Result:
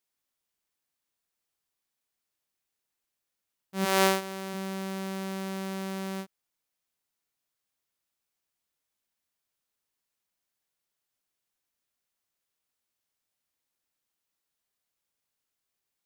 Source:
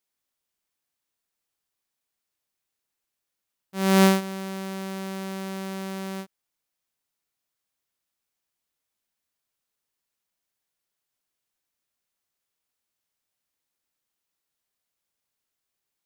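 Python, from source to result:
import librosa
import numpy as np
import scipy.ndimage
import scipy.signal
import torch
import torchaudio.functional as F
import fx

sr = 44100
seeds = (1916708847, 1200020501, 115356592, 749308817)

y = fx.highpass(x, sr, hz=fx.line((3.84, 510.0), (4.53, 200.0)), slope=12, at=(3.84, 4.53), fade=0.02)
y = F.gain(torch.from_numpy(y), -1.5).numpy()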